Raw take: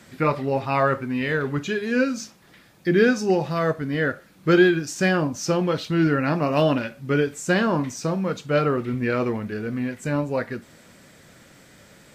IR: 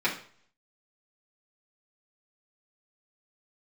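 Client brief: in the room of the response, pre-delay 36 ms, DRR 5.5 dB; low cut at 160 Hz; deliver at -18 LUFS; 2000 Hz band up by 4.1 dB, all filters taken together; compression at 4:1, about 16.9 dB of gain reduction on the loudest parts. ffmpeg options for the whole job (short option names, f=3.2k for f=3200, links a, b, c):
-filter_complex "[0:a]highpass=160,equalizer=f=2k:t=o:g=5.5,acompressor=threshold=-33dB:ratio=4,asplit=2[a][b];[1:a]atrim=start_sample=2205,adelay=36[c];[b][c]afir=irnorm=-1:irlink=0,volume=-17.5dB[d];[a][d]amix=inputs=2:normalize=0,volume=16dB"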